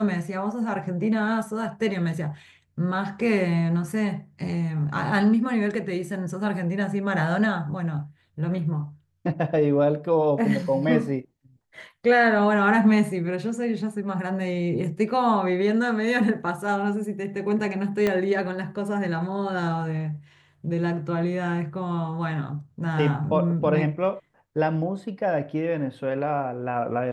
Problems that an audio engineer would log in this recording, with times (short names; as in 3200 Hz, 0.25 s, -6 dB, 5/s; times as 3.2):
18.07 pop -11 dBFS